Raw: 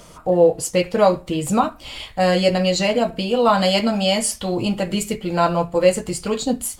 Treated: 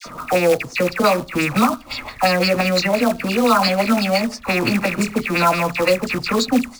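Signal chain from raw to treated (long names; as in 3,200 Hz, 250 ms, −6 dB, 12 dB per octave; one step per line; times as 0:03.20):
loose part that buzzes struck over −35 dBFS, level −15 dBFS
camcorder AGC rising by 6.2 dB per second
thirty-one-band graphic EQ 125 Hz +5 dB, 250 Hz +11 dB, 1,250 Hz +7 dB, 3,150 Hz −9 dB
auto-filter low-pass sine 5.8 Hz 830–5,200 Hz
notch filter 3,100 Hz, Q 8
all-pass dispersion lows, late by 59 ms, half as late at 1,300 Hz
in parallel at −8.5 dB: log-companded quantiser 4 bits
on the sum: high-shelf EQ 2,400 Hz +9.5 dB
multiband upward and downward compressor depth 40%
level −6.5 dB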